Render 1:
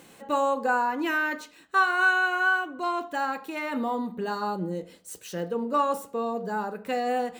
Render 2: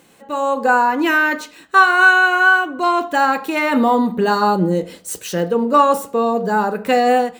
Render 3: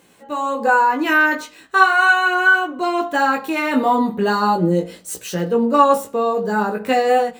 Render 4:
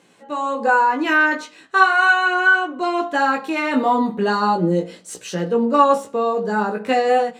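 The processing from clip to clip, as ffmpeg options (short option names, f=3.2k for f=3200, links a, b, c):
-af "dynaudnorm=f=340:g=3:m=14.5dB"
-af "flanger=delay=16.5:depth=3:speed=0.38,volume=1.5dB"
-af "highpass=120,lowpass=7.8k,volume=-1dB"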